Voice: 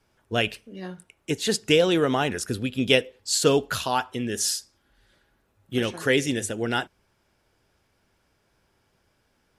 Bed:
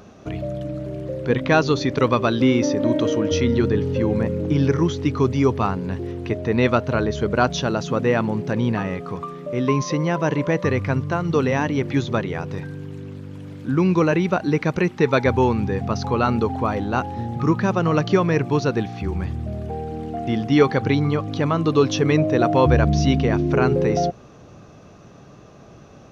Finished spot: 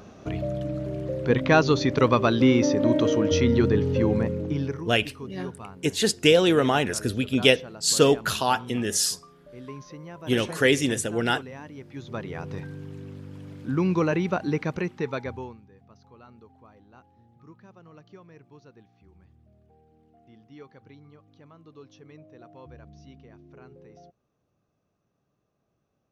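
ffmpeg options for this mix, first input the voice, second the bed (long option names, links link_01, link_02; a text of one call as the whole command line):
ffmpeg -i stem1.wav -i stem2.wav -filter_complex "[0:a]adelay=4550,volume=1.5dB[link_01];[1:a]volume=13dB,afade=type=out:start_time=4.06:duration=0.82:silence=0.11885,afade=type=in:start_time=11.94:duration=0.58:silence=0.188365,afade=type=out:start_time=14.46:duration=1.15:silence=0.0530884[link_02];[link_01][link_02]amix=inputs=2:normalize=0" out.wav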